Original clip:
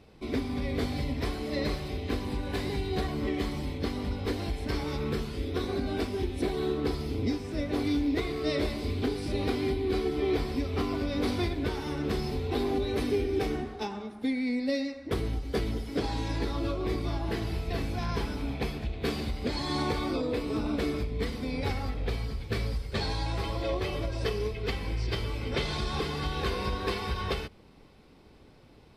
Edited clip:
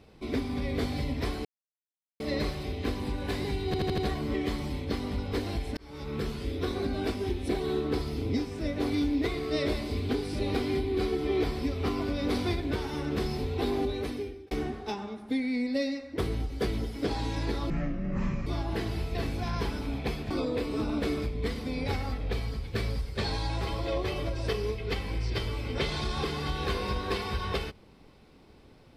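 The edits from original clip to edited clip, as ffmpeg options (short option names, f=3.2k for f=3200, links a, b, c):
-filter_complex "[0:a]asplit=11[a][b][c][d][e][f][g][h][i][j][k];[a]atrim=end=1.45,asetpts=PTS-STARTPTS,afade=t=out:st=1.446:d=0.004:c=hsin,apad=pad_dur=0.75[l];[b]atrim=start=1.45:end=2.992,asetpts=PTS-STARTPTS,afade=t=in:d=0.004:c=hsin[m];[c]atrim=start=2.908:end=2.992[n];[d]atrim=start=2.908:end=2.992[o];[e]atrim=start=2.908:end=2.992[p];[f]atrim=start=2.908:end=4.7,asetpts=PTS-STARTPTS,afade=t=out:st=1.788:d=0.004:c=hsin[q];[g]atrim=start=4.7:end=13.44,asetpts=PTS-STARTPTS,afade=t=in:d=0.53,afade=t=out:st=8.02:d=0.72[r];[h]atrim=start=13.44:end=16.634,asetpts=PTS-STARTPTS,afade=t=in:d=0.004:c=hsin[s];[i]atrim=start=16.63:end=17.02,asetpts=PTS-STARTPTS,asetrate=22491,aresample=44100[t];[j]atrim=start=17.016:end=18.862[u];[k]atrim=start=20.068[v];[l][m]concat=n=2:v=0:a=1[w];[w][n]acrossfade=d=0.004:c1=hsin:c2=hsin[x];[x][o]acrossfade=d=0.004:c1=hsin:c2=hsin[y];[y][p]acrossfade=d=0.004:c1=hsin:c2=hsin[z];[q][r][s]concat=n=3:v=0:a=1[aa];[z][aa]acrossfade=d=0.004:c1=hsin:c2=hsin[ab];[ab][t]acrossfade=d=0.004:c1=hsin:c2=hsin[ac];[ac][u]acrossfade=d=0.004:c1=hsin:c2=hsin[ad];[ad][v]acrossfade=d=0.004:c1=hsin:c2=hsin"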